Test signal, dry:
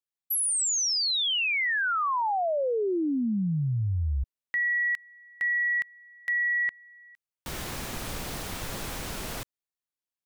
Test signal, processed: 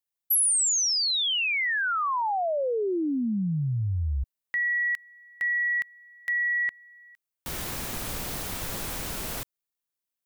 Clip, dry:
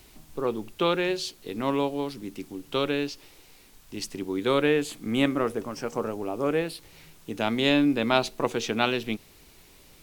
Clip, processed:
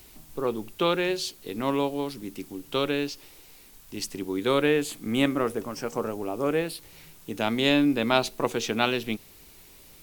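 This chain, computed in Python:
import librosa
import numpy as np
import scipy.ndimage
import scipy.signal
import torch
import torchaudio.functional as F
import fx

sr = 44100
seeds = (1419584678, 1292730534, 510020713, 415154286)

y = fx.high_shelf(x, sr, hz=10000.0, db=8.5)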